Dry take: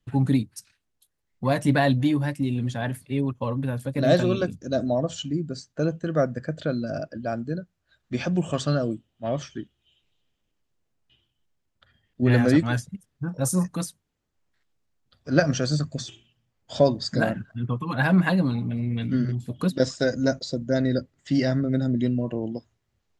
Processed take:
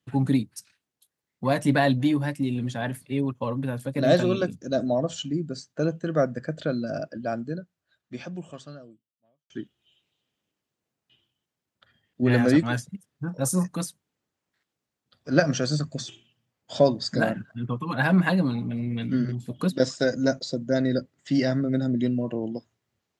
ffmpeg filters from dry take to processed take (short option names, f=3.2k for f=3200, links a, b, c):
-filter_complex "[0:a]asplit=2[a][b];[a]atrim=end=9.5,asetpts=PTS-STARTPTS,afade=t=out:st=7.33:d=2.17:c=qua[c];[b]atrim=start=9.5,asetpts=PTS-STARTPTS,afade=t=in:d=0.004:c=hsin[d];[c][d]concat=n=2:v=0:a=1,highpass=130"